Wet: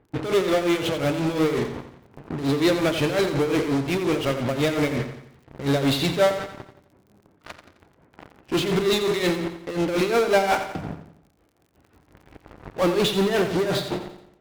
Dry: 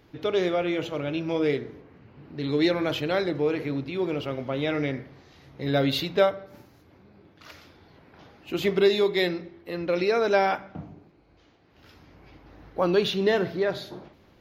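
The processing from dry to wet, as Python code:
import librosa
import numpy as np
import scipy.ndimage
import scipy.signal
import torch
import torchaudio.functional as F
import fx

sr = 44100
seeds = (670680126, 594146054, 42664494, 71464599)

p1 = fx.env_lowpass(x, sr, base_hz=1400.0, full_db=-20.5)
p2 = fx.fuzz(p1, sr, gain_db=42.0, gate_db=-45.0)
p3 = p1 + (p2 * librosa.db_to_amplitude(-8.0))
p4 = p3 * (1.0 - 0.73 / 2.0 + 0.73 / 2.0 * np.cos(2.0 * np.pi * 5.6 * (np.arange(len(p3)) / sr)))
p5 = fx.dmg_crackle(p4, sr, seeds[0], per_s=39.0, level_db=-45.0)
p6 = fx.echo_feedback(p5, sr, ms=87, feedback_pct=46, wet_db=-10)
y = p6 * librosa.db_to_amplitude(-1.0)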